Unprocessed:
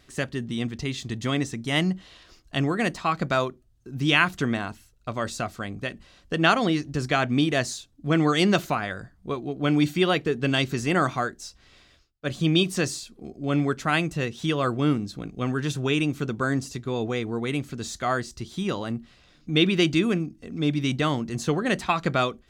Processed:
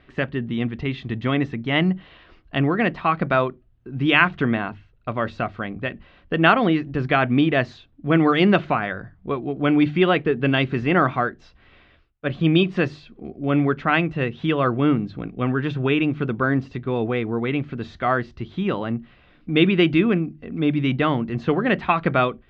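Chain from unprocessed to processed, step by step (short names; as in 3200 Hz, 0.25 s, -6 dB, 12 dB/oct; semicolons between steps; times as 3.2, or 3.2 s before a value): LPF 2900 Hz 24 dB/oct; notches 50/100/150 Hz; gain +4.5 dB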